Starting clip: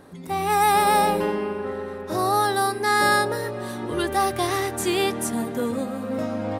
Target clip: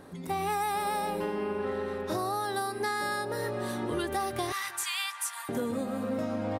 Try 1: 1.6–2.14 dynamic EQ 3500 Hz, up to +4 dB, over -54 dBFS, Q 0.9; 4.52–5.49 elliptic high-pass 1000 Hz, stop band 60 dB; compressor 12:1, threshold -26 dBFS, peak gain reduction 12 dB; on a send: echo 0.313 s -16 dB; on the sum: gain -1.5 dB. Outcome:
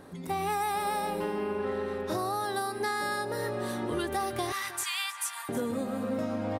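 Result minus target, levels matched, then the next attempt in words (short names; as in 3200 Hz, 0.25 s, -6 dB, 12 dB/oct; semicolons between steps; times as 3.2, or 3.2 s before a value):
echo-to-direct +7.5 dB
1.6–2.14 dynamic EQ 3500 Hz, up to +4 dB, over -54 dBFS, Q 0.9; 4.52–5.49 elliptic high-pass 1000 Hz, stop band 60 dB; compressor 12:1, threshold -26 dBFS, peak gain reduction 12 dB; on a send: echo 0.313 s -23.5 dB; on the sum: gain -1.5 dB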